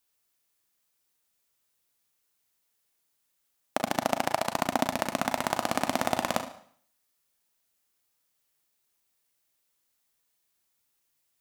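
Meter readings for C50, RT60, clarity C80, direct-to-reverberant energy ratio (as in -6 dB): 9.5 dB, 0.60 s, 14.0 dB, 6.0 dB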